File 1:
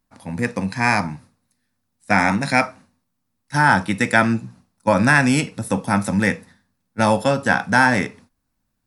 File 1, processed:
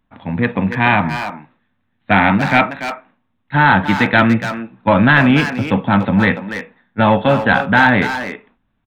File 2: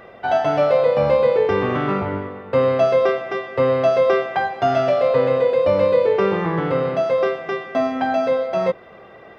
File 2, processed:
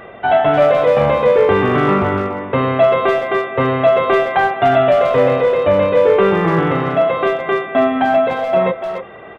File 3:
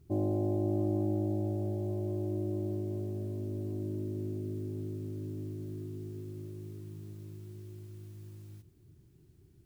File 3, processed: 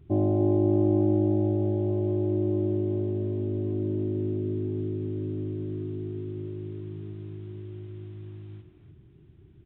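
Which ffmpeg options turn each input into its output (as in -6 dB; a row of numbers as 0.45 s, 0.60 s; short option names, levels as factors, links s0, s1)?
-filter_complex "[0:a]bandreject=f=520:w=15,aresample=8000,asoftclip=type=tanh:threshold=0.282,aresample=44100,asplit=2[s0][s1];[s1]adelay=290,highpass=300,lowpass=3400,asoftclip=type=hard:threshold=0.126,volume=0.447[s2];[s0][s2]amix=inputs=2:normalize=0,volume=2.24"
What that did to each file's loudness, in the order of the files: +4.5 LU, +4.5 LU, +8.0 LU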